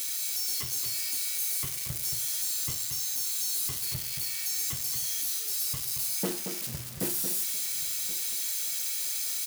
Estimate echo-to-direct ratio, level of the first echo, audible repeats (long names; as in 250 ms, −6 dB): −7.0 dB, −7.5 dB, 3